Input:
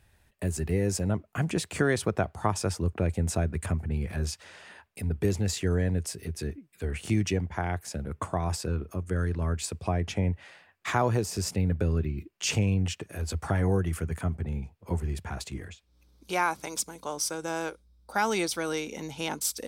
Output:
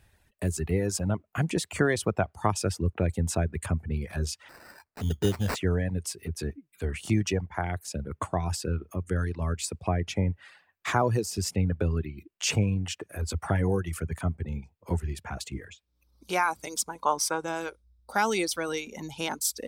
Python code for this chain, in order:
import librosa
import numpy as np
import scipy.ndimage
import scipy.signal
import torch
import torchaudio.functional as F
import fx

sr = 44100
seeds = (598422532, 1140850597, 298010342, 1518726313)

y = fx.dereverb_blind(x, sr, rt60_s=1.0)
y = fx.sample_hold(y, sr, seeds[0], rate_hz=3300.0, jitter_pct=0, at=(4.48, 5.54), fade=0.02)
y = fx.peak_eq(y, sr, hz=1000.0, db=13.5, octaves=1.1, at=(16.81, 17.45))
y = y * librosa.db_to_amplitude(1.5)